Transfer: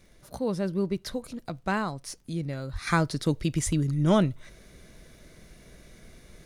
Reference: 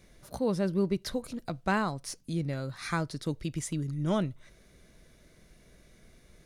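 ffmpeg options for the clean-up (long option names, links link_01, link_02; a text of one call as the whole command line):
ffmpeg -i in.wav -filter_complex "[0:a]adeclick=threshold=4,asplit=3[link_01][link_02][link_03];[link_01]afade=type=out:start_time=2.72:duration=0.02[link_04];[link_02]highpass=frequency=140:width=0.5412,highpass=frequency=140:width=1.3066,afade=type=in:start_time=2.72:duration=0.02,afade=type=out:start_time=2.84:duration=0.02[link_05];[link_03]afade=type=in:start_time=2.84:duration=0.02[link_06];[link_04][link_05][link_06]amix=inputs=3:normalize=0,asplit=3[link_07][link_08][link_09];[link_07]afade=type=out:start_time=3.65:duration=0.02[link_10];[link_08]highpass=frequency=140:width=0.5412,highpass=frequency=140:width=1.3066,afade=type=in:start_time=3.65:duration=0.02,afade=type=out:start_time=3.77:duration=0.02[link_11];[link_09]afade=type=in:start_time=3.77:duration=0.02[link_12];[link_10][link_11][link_12]amix=inputs=3:normalize=0,agate=range=-21dB:threshold=-46dB,asetnsamples=nb_out_samples=441:pad=0,asendcmd='2.87 volume volume -7dB',volume=0dB" out.wav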